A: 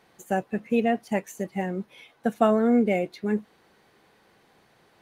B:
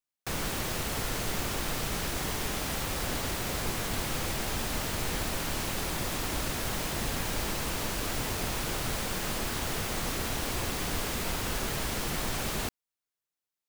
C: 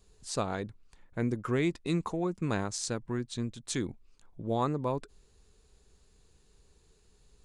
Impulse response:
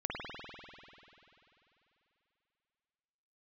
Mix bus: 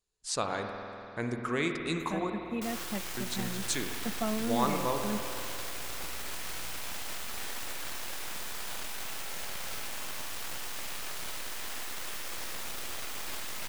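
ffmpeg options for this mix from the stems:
-filter_complex "[0:a]equalizer=f=190:t=o:w=0.9:g=14.5,aeval=exprs='val(0)+0.0224*(sin(2*PI*60*n/s)+sin(2*PI*2*60*n/s)/2+sin(2*PI*3*60*n/s)/3+sin(2*PI*4*60*n/s)/4+sin(2*PI*5*60*n/s)/5)':c=same,adelay=1800,volume=-11dB[a];[1:a]aeval=exprs='abs(val(0))':c=same,adelay=2350,volume=-6dB,asplit=2[b][c];[c]volume=-5.5dB[d];[2:a]agate=range=-20dB:threshold=-52dB:ratio=16:detection=peak,volume=1dB,asplit=3[e][f][g];[e]atrim=end=2.3,asetpts=PTS-STARTPTS,afade=t=out:st=2.296:d=0.004:c=hsin[h];[f]atrim=start=2.3:end=3.17,asetpts=PTS-STARTPTS,volume=0[i];[g]atrim=start=3.17,asetpts=PTS-STARTPTS,afade=t=in:d=0.004:c=hsin[j];[h][i][j]concat=n=3:v=0:a=1,asplit=2[k][l];[l]volume=-5dB[m];[3:a]atrim=start_sample=2205[n];[d][m]amix=inputs=2:normalize=0[o];[o][n]afir=irnorm=-1:irlink=0[p];[a][b][k][p]amix=inputs=4:normalize=0,lowshelf=f=490:g=-12"

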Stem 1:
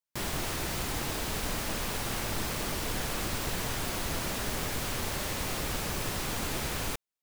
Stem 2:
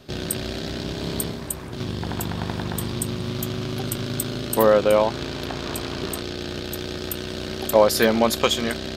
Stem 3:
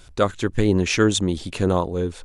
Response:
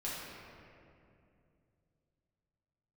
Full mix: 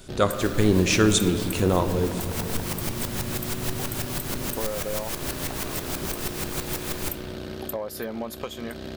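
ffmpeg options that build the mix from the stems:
-filter_complex "[0:a]aeval=exprs='val(0)*pow(10,-19*if(lt(mod(-6.2*n/s,1),2*abs(-6.2)/1000),1-mod(-6.2*n/s,1)/(2*abs(-6.2)/1000),(mod(-6.2*n/s,1)-2*abs(-6.2)/1000)/(1-2*abs(-6.2)/1000))/20)':c=same,adelay=150,volume=1.5dB,asplit=2[a][b];[b]volume=-5dB[c];[1:a]asoftclip=type=tanh:threshold=-6dB,acompressor=threshold=-26dB:ratio=6,equalizer=f=6.1k:t=o:w=2.6:g=-10.5,volume=-2.5dB[d];[2:a]volume=-3.5dB,asplit=3[e][f][g];[f]volume=-8.5dB[h];[g]apad=whole_len=325291[i];[a][i]sidechaincompress=threshold=-41dB:ratio=8:attack=16:release=247[j];[3:a]atrim=start_sample=2205[k];[c][h]amix=inputs=2:normalize=0[l];[l][k]afir=irnorm=-1:irlink=0[m];[j][d][e][m]amix=inputs=4:normalize=0,highshelf=f=6.8k:g=8"

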